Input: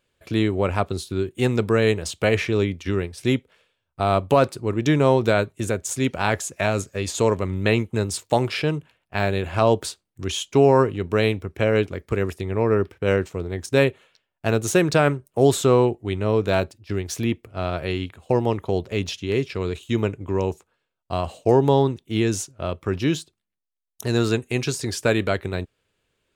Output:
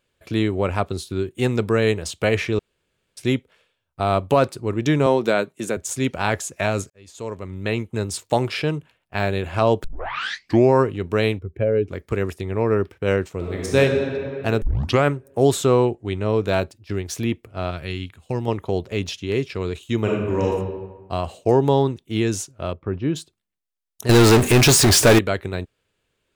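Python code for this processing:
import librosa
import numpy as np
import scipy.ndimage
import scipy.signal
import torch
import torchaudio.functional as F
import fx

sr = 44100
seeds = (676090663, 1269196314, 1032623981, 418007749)

y = fx.highpass(x, sr, hz=160.0, slope=24, at=(5.06, 5.77))
y = fx.spec_expand(y, sr, power=1.7, at=(11.38, 11.88), fade=0.02)
y = fx.reverb_throw(y, sr, start_s=13.36, length_s=0.42, rt60_s=2.5, drr_db=-3.0)
y = fx.steep_lowpass(y, sr, hz=9900.0, slope=36, at=(15.85, 16.38))
y = fx.peak_eq(y, sr, hz=600.0, db=-9.0, octaves=2.1, at=(17.71, 18.48))
y = fx.reverb_throw(y, sr, start_s=20.0, length_s=0.47, rt60_s=1.2, drr_db=-3.5)
y = fx.spacing_loss(y, sr, db_at_10k=43, at=(22.72, 23.15), fade=0.02)
y = fx.power_curve(y, sr, exponent=0.35, at=(24.09, 25.19))
y = fx.edit(y, sr, fx.room_tone_fill(start_s=2.59, length_s=0.58),
    fx.fade_in_span(start_s=6.9, length_s=1.33),
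    fx.tape_start(start_s=9.84, length_s=0.88),
    fx.tape_start(start_s=14.62, length_s=0.42), tone=tone)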